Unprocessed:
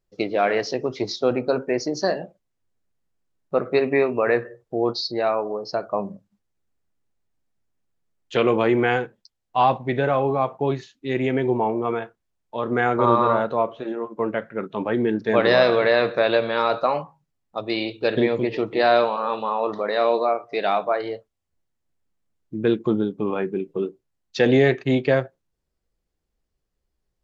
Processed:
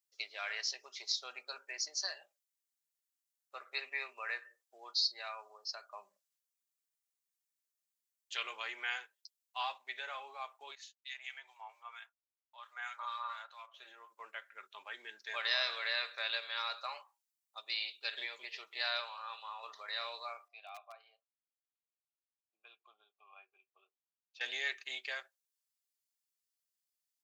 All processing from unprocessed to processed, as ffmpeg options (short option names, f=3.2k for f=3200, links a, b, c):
-filter_complex "[0:a]asettb=1/sr,asplit=3[a][b][c];[a]atrim=end=10.754[d];[b]atrim=start=10.75:end=13.74,asetpts=PTS-STARTPTS,afade=t=in:d=0.004:c=qsin,afade=t=out:st=2.986:d=0.004:c=qsin,highpass=f=690:w=0.5412,highpass=f=690:w=1.3066,agate=range=-33dB:threshold=-48dB:ratio=3:release=100:detection=peak,acrossover=split=1400[e][f];[e]aeval=exprs='val(0)*(1-0.7/2+0.7/2*cos(2*PI*4.4*n/s))':c=same[g];[f]aeval=exprs='val(0)*(1-0.7/2-0.7/2*cos(2*PI*4.4*n/s))':c=same[h];[g][h]amix=inputs=2:normalize=0[i];[c]atrim=start=13.736[j];[d][i]acrossfade=d=0.004:c1=hsin:c2=qsin[k];[k][j]acrossfade=d=0.004:c1=qsin:c2=hsin,asettb=1/sr,asplit=3[l][m][n];[l]atrim=end=19.004[o];[m]atrim=start=19:end=19.63,asetpts=PTS-STARTPTS,afade=t=in:d=0.004:c=qsin,afade=t=out:st=0.626:d=0.004:c=qsin,highpass=500,highshelf=f=3.8k:g=-5.5[p];[n]atrim=start=19.626[q];[o][p]acrossfade=d=0.004:c1=hsin:c2=qsin[r];[r][q]acrossfade=d=0.004:c1=qsin:c2=hsin,asettb=1/sr,asplit=3[s][t][u];[s]atrim=end=20.484[v];[t]atrim=start=20.48:end=24.41,asetpts=PTS-STARTPTS,afade=t=in:d=0.004:c=qsin,afade=t=out:st=3.926:d=0.004:c=qsin,asplit=3[w][x][y];[w]bandpass=f=730:t=q:w=8,volume=0dB[z];[x]bandpass=f=1.09k:t=q:w=8,volume=-6dB[aa];[y]bandpass=f=2.44k:t=q:w=8,volume=-9dB[ab];[z][aa][ab]amix=inputs=3:normalize=0,asoftclip=type=hard:threshold=-17.5dB[ac];[u]atrim=start=24.406[ad];[v][ac]acrossfade=d=0.004:c1=hsin:c2=qsin[ae];[ae][ad]acrossfade=d=0.004:c1=qsin:c2=hsin,highpass=990,aderivative,aecho=1:1:5:0.32"